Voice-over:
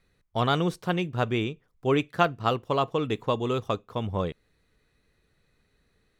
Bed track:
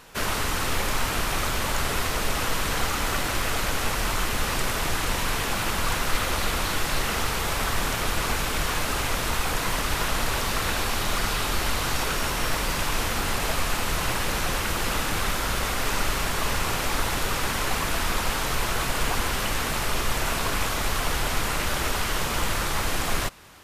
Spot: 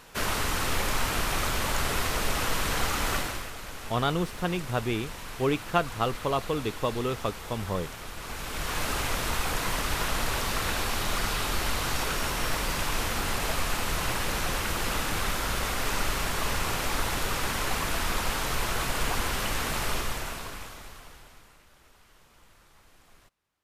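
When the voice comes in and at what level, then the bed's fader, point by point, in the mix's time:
3.55 s, -2.5 dB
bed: 3.16 s -2 dB
3.53 s -14 dB
8.16 s -14 dB
8.83 s -3 dB
19.92 s -3 dB
21.66 s -32.5 dB

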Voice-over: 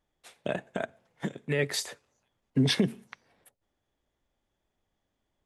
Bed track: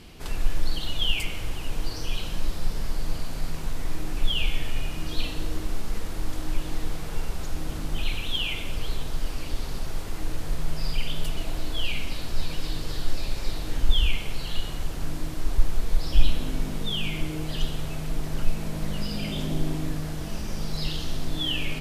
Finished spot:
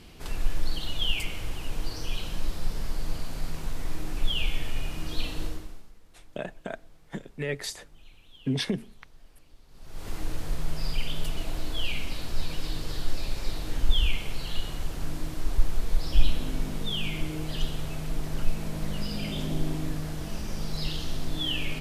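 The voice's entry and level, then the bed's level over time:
5.90 s, -3.5 dB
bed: 5.46 s -2.5 dB
5.96 s -25.5 dB
9.67 s -25.5 dB
10.08 s -2 dB

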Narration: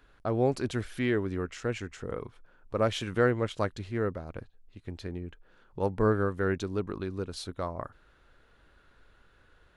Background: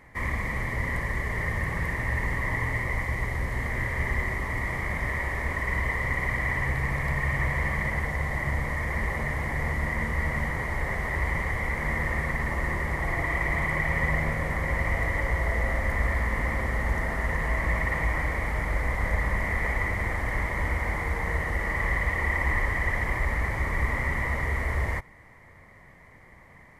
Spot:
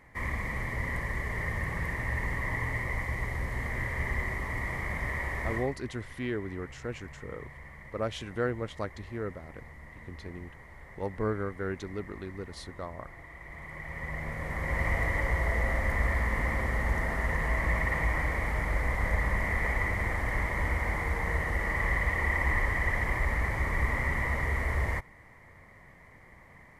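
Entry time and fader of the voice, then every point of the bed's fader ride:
5.20 s, -5.5 dB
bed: 5.56 s -4 dB
5.77 s -20.5 dB
13.37 s -20.5 dB
14.84 s -2 dB

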